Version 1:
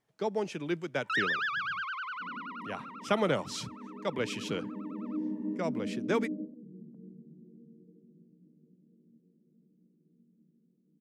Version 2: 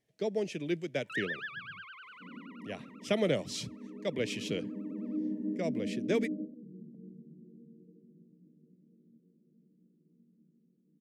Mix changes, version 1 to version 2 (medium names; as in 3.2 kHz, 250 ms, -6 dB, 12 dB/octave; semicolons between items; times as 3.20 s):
first sound: add distance through air 410 m; master: add high-order bell 1.1 kHz -13 dB 1.1 oct